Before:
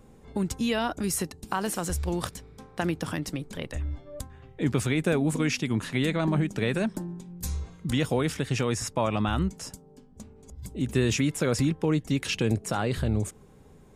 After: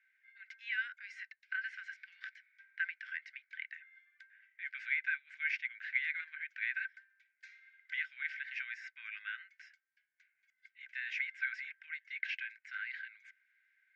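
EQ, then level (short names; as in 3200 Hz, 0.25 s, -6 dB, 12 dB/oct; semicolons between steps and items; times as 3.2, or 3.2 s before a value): rippled Chebyshev high-pass 1500 Hz, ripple 9 dB; LPF 2200 Hz 24 dB/oct; +6.5 dB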